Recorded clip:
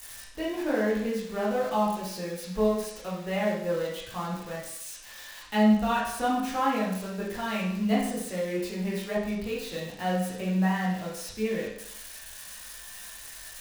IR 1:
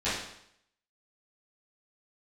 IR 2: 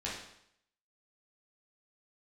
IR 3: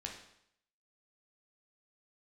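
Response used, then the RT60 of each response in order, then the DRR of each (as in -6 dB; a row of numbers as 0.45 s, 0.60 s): 2; 0.70 s, 0.70 s, 0.70 s; -14.5 dB, -7.0 dB, 0.0 dB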